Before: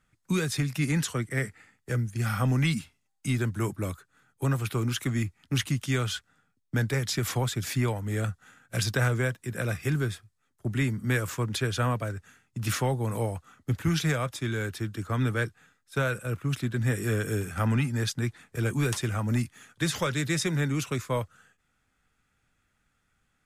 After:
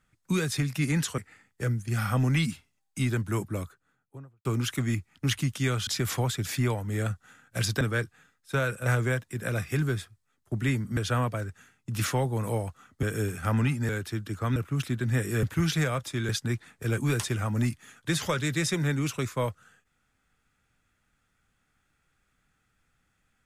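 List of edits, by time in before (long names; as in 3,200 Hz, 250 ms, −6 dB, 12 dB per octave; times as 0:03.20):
0:01.18–0:01.46: remove
0:03.65–0:04.73: fade out and dull
0:06.15–0:07.05: remove
0:11.10–0:11.65: remove
0:13.71–0:14.57: swap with 0:17.16–0:18.02
0:15.24–0:16.29: move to 0:08.99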